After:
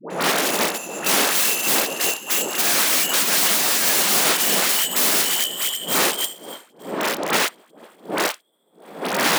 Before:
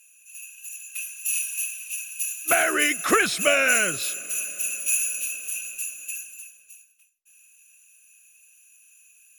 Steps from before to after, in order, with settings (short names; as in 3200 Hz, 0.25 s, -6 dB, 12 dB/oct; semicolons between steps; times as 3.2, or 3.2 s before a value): gliding pitch shift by +5 st starting unshifted; wind noise 480 Hz -32 dBFS; three-band isolator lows -13 dB, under 330 Hz, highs -14 dB, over 8000 Hz; notches 50/100/150/200/250/300/350/400 Hz; sample leveller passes 3; in parallel at +2 dB: limiter -15.5 dBFS, peak gain reduction 7.5 dB; on the sum: wrapped overs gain 12.5 dB; brick-wall FIR high-pass 150 Hz; dispersion highs, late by 0.103 s, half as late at 760 Hz; upward expander 1.5:1, over -37 dBFS